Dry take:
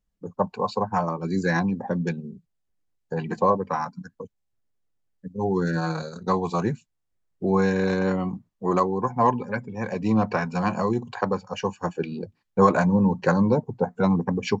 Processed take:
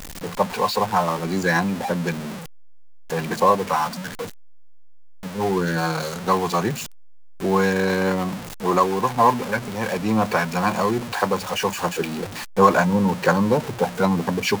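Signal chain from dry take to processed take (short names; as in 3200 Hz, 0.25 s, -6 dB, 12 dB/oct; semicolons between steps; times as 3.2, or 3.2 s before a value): zero-crossing step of -29 dBFS; low shelf 430 Hz -7.5 dB; gain +5 dB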